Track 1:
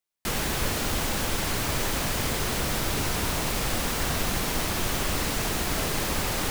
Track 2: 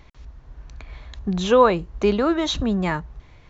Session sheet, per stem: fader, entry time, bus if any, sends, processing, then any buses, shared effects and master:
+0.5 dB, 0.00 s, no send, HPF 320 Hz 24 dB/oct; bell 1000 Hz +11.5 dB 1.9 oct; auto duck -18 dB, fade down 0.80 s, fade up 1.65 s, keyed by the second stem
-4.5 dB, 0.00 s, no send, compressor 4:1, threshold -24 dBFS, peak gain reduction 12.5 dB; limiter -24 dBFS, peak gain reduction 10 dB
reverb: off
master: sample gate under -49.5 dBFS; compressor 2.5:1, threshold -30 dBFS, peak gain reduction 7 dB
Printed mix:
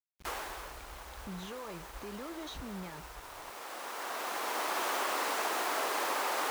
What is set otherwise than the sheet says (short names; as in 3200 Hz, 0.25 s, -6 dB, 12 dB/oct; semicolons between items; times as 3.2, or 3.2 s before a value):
stem 1 +0.5 dB -> -7.0 dB; stem 2 -4.5 dB -> -12.5 dB